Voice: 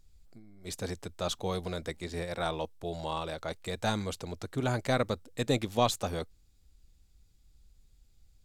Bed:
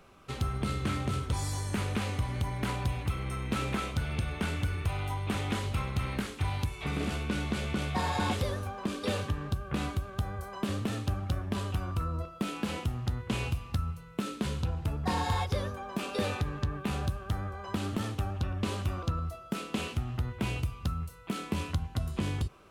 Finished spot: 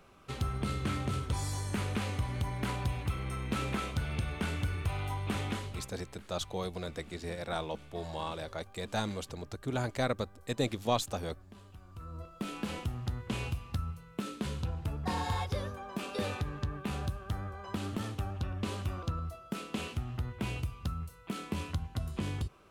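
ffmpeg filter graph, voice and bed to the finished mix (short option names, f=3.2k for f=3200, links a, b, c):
-filter_complex "[0:a]adelay=5100,volume=-3dB[a];[1:a]volume=15dB,afade=t=out:st=5.42:d=0.51:silence=0.11885,afade=t=in:st=11.89:d=0.65:silence=0.141254[b];[a][b]amix=inputs=2:normalize=0"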